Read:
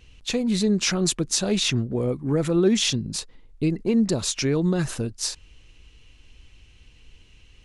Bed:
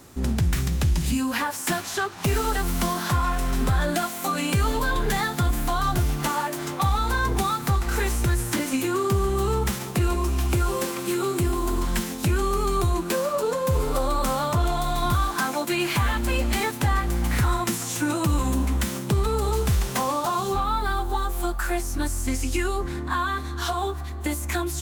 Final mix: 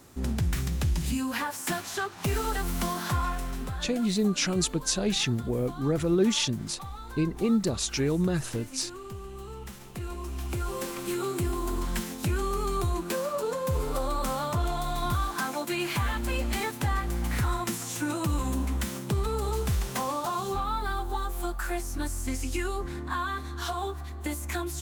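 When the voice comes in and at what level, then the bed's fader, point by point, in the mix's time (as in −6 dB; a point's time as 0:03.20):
3.55 s, −4.0 dB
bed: 0:03.24 −5 dB
0:04.05 −18 dB
0:09.55 −18 dB
0:11.00 −5.5 dB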